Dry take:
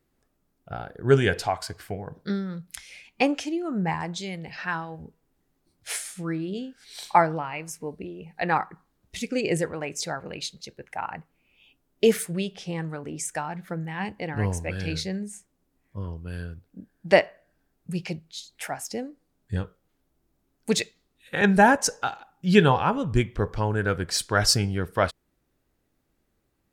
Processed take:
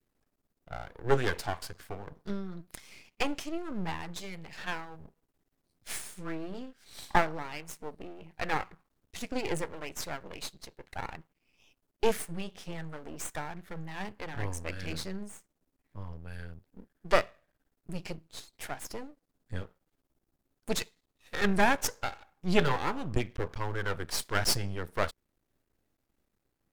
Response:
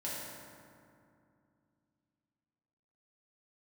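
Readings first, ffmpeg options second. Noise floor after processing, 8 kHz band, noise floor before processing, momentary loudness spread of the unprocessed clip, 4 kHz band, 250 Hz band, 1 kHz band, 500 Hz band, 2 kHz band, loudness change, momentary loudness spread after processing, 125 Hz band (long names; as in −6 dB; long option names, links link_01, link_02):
−82 dBFS, −7.5 dB, −73 dBFS, 18 LU, −7.0 dB, −9.5 dB, −8.0 dB, −8.5 dB, −6.5 dB, −8.0 dB, 18 LU, −10.0 dB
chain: -af "adynamicequalizer=threshold=0.0141:dfrequency=650:dqfactor=1.3:tfrequency=650:tqfactor=1.3:attack=5:release=100:ratio=0.375:range=2:mode=cutabove:tftype=bell,aeval=exprs='max(val(0),0)':channel_layout=same,volume=-2.5dB"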